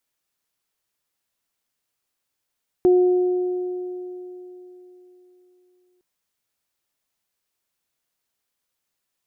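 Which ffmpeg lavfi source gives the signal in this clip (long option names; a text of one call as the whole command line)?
ffmpeg -f lavfi -i "aevalsrc='0.282*pow(10,-3*t/3.66)*sin(2*PI*362*t)+0.0355*pow(10,-3*t/3.23)*sin(2*PI*724*t)':duration=3.16:sample_rate=44100" out.wav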